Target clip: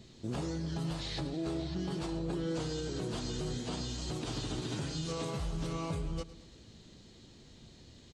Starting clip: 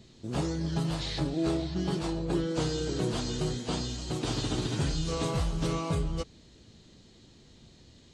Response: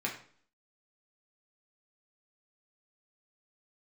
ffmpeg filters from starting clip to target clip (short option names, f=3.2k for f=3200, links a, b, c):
-filter_complex "[0:a]asettb=1/sr,asplit=3[a][b][c];[a]atrim=end=4.604[d];[b]atrim=start=4.6:end=5.39,asetpts=PTS-STARTPTS,afade=t=in:d=0.004:c=qsin,afade=t=out:st=0.786:d=0.004:c=qsin,highpass=100[e];[c]atrim=start=5.386[f];[d][e]acrossfade=d=0.004:c1=hsin:c2=qsin[g];[g][f]acrossfade=d=0.004:c1=qsin:c2=hsin,alimiter=level_in=4dB:limit=-24dB:level=0:latency=1:release=169,volume=-4dB,aecho=1:1:109|218|327|436|545:0.15|0.0763|0.0389|0.0198|0.0101"